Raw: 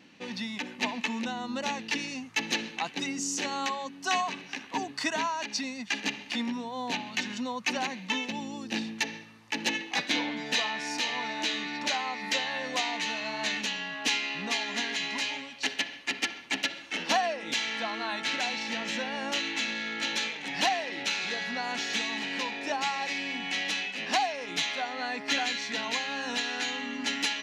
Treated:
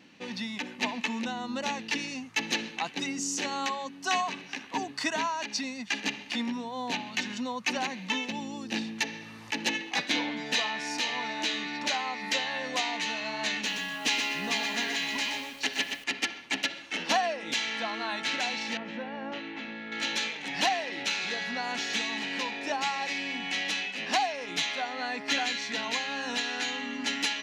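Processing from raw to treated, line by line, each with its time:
7.77–9.90 s: upward compressor, threshold -35 dBFS
13.53–16.04 s: bit-crushed delay 123 ms, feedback 35%, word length 8-bit, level -5.5 dB
18.77–19.92 s: tape spacing loss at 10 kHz 39 dB

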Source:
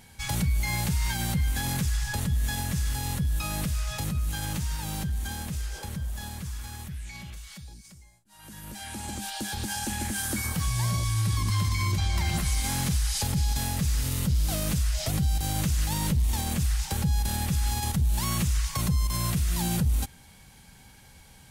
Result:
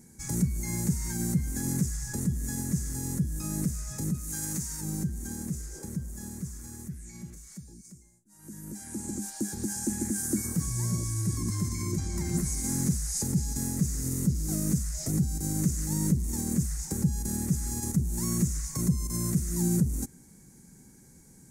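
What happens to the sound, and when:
4.14–4.81 s: tilt shelf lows -5 dB, about 720 Hz
whole clip: FFT filter 100 Hz 0 dB, 150 Hz +10 dB, 350 Hz +14 dB, 680 Hz -5 dB, 2 kHz -3 dB, 3.1 kHz -19 dB, 6.7 kHz +11 dB, 9.7 kHz +7 dB, 14 kHz +3 dB; trim -7.5 dB

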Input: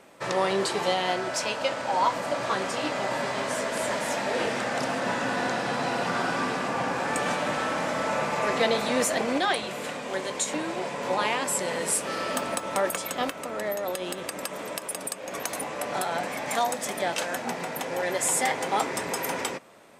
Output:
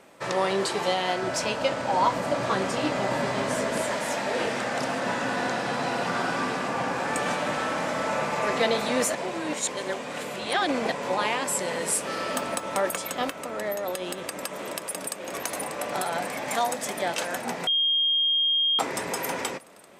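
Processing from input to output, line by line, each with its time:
1.22–3.82 s: bass shelf 340 Hz +8.5 dB
9.15–10.92 s: reverse
14.01–15.16 s: echo throw 590 ms, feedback 80%, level -9.5 dB
17.67–18.79 s: bleep 3.23 kHz -20 dBFS

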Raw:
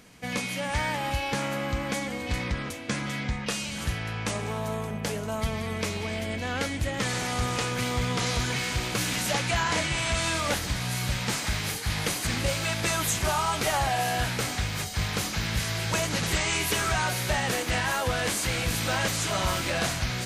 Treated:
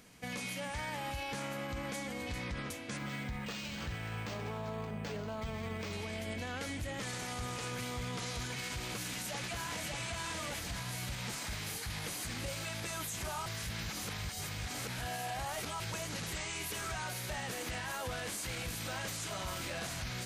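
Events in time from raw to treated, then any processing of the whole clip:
2.97–5.93 s: decimation joined by straight lines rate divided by 4×
8.84–10.00 s: echo throw 590 ms, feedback 35%, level -2 dB
13.46–15.80 s: reverse
whole clip: treble shelf 8.2 kHz +4.5 dB; peak limiter -25 dBFS; trim -6 dB

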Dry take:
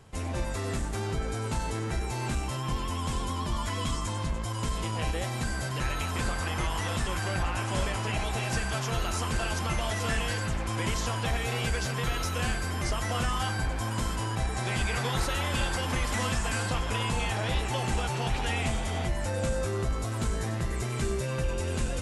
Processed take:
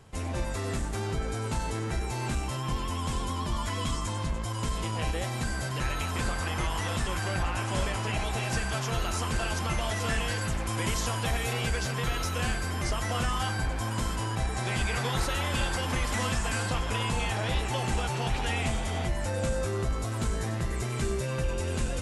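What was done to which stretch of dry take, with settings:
10.41–11.53 s: treble shelf 10 kHz +9.5 dB

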